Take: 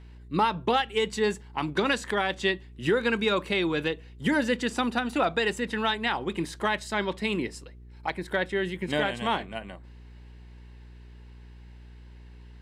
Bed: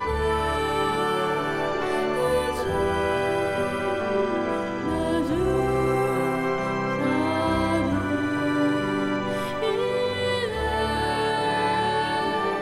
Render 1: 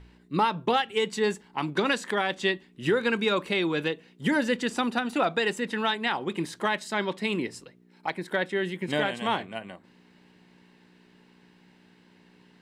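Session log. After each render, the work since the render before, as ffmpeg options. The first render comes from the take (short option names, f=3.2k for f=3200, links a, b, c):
-af "bandreject=f=60:t=h:w=4,bandreject=f=120:t=h:w=4"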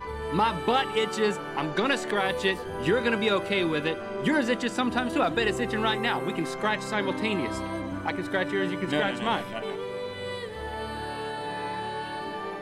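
-filter_complex "[1:a]volume=-9.5dB[a];[0:a][a]amix=inputs=2:normalize=0"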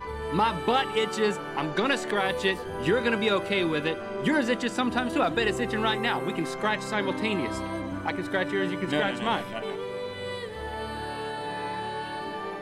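-af anull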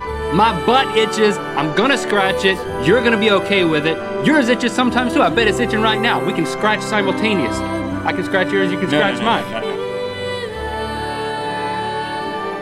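-af "volume=11dB,alimiter=limit=-2dB:level=0:latency=1"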